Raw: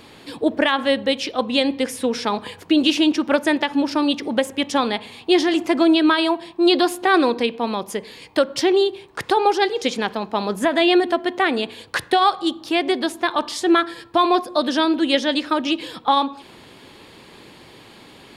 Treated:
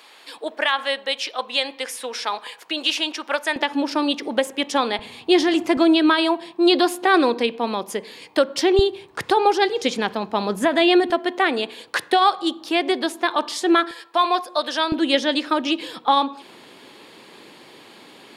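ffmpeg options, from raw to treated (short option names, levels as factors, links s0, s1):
-af "asetnsamples=n=441:p=0,asendcmd='3.56 highpass f 290;4.99 highpass f 90;5.77 highpass f 200;8.79 highpass f 72;11.1 highpass f 260;13.91 highpass f 610;14.92 highpass f 220',highpass=770"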